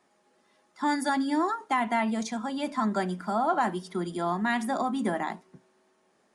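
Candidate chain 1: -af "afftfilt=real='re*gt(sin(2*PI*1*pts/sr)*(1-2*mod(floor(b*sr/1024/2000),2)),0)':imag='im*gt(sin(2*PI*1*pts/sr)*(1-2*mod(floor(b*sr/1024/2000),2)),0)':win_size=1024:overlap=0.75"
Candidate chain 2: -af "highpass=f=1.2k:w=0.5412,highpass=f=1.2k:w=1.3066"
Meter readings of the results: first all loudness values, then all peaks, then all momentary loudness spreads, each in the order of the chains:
-31.5, -36.0 LUFS; -16.0, -19.0 dBFS; 16, 9 LU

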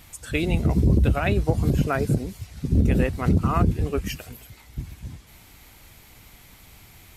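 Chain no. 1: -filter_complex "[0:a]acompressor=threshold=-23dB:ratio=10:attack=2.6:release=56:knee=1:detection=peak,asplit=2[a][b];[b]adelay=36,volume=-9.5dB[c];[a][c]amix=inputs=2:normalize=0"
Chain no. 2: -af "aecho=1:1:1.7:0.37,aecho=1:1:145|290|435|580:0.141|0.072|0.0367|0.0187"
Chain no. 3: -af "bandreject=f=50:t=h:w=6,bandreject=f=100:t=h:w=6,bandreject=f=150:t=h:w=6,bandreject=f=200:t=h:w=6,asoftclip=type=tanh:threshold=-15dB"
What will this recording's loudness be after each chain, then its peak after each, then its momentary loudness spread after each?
-29.0, -22.0, -25.5 LUFS; -14.0, -7.5, -15.5 dBFS; 21, 17, 16 LU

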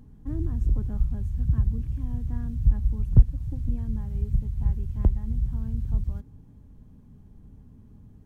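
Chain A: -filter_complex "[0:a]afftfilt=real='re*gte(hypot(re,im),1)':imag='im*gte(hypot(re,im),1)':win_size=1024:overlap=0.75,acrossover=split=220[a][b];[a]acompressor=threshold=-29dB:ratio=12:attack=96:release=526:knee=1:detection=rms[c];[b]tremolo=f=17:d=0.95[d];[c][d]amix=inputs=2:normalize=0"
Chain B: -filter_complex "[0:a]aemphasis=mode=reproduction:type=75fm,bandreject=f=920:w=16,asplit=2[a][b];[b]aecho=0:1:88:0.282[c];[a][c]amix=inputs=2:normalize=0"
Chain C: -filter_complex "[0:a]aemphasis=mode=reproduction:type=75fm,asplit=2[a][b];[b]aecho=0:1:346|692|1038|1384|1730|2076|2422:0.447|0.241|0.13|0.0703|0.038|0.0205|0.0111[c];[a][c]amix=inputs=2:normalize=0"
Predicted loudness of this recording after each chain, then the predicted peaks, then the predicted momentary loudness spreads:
-38.5, -27.0, -26.0 LUFS; -15.5, -2.5, -2.5 dBFS; 10, 9, 14 LU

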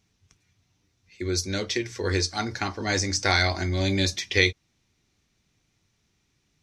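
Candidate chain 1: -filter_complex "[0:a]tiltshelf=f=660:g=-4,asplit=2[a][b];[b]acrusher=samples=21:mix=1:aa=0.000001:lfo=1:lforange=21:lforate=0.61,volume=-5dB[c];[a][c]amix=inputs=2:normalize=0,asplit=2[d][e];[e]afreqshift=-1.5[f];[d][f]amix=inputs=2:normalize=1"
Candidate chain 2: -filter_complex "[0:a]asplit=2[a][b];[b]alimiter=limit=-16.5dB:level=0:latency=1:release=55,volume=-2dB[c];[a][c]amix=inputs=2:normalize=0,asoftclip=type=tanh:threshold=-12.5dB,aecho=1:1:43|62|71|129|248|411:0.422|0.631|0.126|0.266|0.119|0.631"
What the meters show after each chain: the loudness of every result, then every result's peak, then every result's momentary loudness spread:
-25.0, -20.0 LUFS; -5.0, -6.5 dBFS; 8, 6 LU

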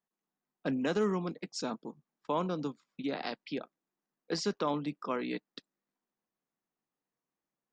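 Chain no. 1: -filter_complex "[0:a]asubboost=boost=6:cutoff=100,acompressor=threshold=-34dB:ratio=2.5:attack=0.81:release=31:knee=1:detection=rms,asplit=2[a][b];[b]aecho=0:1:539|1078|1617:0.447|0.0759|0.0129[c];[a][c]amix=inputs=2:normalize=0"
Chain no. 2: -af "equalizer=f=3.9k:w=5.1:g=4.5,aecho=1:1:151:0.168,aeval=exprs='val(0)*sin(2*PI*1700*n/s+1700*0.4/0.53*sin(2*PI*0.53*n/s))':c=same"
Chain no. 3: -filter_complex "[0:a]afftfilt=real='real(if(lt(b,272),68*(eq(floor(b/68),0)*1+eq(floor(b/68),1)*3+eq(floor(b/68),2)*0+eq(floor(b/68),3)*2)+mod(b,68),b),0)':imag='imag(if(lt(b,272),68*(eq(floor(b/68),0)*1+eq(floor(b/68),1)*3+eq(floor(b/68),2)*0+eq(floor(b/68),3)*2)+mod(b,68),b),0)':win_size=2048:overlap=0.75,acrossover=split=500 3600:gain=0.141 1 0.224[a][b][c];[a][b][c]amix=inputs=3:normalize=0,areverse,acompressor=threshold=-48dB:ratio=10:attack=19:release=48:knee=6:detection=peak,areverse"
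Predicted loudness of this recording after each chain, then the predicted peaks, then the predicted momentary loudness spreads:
-40.5, -36.5, -46.5 LUFS; -25.5, -19.5, -32.0 dBFS; 12, 11, 9 LU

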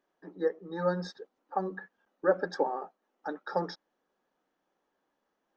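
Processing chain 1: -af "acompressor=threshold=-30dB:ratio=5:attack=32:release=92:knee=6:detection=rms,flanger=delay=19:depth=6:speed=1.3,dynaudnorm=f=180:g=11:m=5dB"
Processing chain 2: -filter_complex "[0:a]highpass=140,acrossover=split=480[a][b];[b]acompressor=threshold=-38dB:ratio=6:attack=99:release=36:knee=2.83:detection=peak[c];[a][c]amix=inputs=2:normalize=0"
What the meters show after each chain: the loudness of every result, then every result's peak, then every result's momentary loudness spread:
-36.0, -35.0 LUFS; -17.0, -17.0 dBFS; 13, 17 LU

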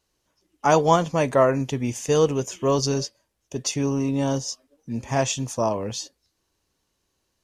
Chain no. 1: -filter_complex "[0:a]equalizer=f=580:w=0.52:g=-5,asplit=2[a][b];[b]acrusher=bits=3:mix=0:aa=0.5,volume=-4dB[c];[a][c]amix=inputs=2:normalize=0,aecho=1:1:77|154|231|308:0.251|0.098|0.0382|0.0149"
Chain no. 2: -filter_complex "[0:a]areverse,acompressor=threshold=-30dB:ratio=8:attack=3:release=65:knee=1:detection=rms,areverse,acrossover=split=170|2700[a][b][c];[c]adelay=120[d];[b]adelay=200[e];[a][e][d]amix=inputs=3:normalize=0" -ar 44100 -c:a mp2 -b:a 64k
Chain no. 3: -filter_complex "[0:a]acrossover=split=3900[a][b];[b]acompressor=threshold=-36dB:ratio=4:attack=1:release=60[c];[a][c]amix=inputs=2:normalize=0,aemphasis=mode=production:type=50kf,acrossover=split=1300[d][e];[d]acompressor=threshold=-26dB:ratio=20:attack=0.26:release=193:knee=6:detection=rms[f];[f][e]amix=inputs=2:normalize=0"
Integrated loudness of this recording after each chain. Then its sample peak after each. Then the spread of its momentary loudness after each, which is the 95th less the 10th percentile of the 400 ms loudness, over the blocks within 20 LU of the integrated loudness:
-22.0, -35.5, -30.0 LUFS; -3.5, -20.0, -13.0 dBFS; 13, 7, 6 LU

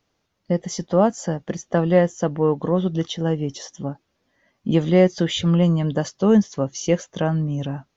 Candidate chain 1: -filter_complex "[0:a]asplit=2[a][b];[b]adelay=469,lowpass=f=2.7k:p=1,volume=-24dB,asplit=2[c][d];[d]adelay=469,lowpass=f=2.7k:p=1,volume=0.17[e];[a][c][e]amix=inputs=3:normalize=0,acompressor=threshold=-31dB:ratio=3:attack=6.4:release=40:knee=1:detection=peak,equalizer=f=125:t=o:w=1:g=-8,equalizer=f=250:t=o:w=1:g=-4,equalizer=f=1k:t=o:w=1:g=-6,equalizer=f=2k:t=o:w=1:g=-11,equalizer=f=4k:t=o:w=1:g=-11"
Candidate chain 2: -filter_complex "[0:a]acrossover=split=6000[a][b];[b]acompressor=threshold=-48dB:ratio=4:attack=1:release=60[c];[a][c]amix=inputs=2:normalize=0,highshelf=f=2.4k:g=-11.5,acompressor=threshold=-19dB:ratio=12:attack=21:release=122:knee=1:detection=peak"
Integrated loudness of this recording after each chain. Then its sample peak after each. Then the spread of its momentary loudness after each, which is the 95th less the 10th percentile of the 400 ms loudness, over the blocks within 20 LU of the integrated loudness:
-36.5, -25.0 LUFS; -22.0, -7.5 dBFS; 6, 7 LU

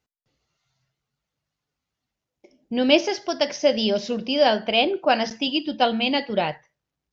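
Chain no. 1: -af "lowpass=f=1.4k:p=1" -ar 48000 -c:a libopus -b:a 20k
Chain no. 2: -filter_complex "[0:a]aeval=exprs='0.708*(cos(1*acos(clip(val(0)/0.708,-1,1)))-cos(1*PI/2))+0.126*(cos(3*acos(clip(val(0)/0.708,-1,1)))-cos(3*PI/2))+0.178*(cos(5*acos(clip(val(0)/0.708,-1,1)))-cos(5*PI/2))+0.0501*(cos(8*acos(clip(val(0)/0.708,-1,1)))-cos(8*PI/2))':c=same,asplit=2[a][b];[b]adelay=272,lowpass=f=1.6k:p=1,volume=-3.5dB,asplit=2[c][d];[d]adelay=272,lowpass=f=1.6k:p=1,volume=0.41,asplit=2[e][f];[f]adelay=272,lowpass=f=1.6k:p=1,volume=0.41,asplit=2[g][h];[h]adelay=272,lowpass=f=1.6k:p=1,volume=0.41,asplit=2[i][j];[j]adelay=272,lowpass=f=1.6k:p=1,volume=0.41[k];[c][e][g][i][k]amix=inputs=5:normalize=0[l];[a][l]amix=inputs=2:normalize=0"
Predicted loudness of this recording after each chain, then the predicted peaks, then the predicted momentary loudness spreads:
-24.0, -18.0 LUFS; -7.0, -2.0 dBFS; 7, 6 LU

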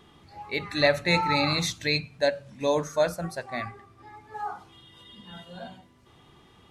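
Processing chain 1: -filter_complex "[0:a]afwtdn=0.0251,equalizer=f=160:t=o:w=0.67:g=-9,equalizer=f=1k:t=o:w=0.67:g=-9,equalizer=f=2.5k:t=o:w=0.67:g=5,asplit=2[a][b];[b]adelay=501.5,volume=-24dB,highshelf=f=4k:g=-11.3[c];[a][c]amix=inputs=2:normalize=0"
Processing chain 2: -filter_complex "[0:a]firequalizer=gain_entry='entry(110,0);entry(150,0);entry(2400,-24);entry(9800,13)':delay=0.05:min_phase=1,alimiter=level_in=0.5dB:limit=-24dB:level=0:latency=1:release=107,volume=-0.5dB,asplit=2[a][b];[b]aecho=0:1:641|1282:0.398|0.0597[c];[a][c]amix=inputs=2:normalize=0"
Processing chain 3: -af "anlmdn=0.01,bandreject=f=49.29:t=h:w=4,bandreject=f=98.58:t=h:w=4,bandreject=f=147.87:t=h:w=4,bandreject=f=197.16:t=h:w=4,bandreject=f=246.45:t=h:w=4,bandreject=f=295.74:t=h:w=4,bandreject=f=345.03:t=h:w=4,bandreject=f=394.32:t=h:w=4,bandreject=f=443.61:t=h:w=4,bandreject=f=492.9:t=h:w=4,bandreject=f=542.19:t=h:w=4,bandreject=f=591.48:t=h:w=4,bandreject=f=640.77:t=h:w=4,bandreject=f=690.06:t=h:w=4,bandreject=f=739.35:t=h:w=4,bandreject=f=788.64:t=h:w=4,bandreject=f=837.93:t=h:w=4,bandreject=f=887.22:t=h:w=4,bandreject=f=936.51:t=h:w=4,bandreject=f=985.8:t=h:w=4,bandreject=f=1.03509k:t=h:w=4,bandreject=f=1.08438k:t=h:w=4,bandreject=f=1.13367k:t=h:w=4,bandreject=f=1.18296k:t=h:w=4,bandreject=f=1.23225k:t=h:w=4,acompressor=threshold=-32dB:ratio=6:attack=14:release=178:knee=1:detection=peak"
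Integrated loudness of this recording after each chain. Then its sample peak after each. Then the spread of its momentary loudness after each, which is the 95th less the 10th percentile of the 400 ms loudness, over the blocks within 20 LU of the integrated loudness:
-26.5, -36.0, -36.0 LUFS; -8.0, -22.0, -18.5 dBFS; 19, 20, 18 LU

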